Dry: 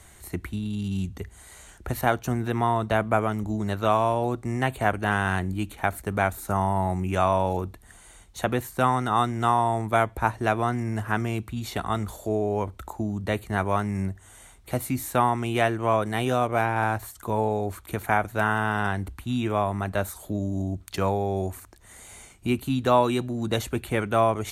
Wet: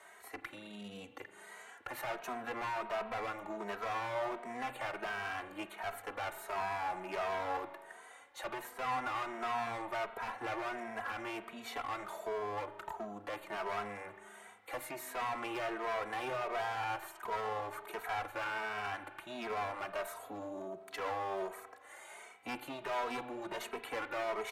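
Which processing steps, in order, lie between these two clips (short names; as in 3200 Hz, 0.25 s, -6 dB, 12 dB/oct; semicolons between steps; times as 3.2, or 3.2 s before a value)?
soft clip -24 dBFS, distortion -7 dB; HPF 200 Hz 12 dB/oct; three-band isolator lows -16 dB, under 420 Hz, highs -15 dB, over 2400 Hz; one-sided clip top -38.5 dBFS; limiter -30 dBFS, peak gain reduction 6.5 dB; low shelf 320 Hz -7.5 dB; spring tank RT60 1.7 s, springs 39 ms, chirp 40 ms, DRR 11 dB; endless flanger 2.8 ms +1.4 Hz; gain +5.5 dB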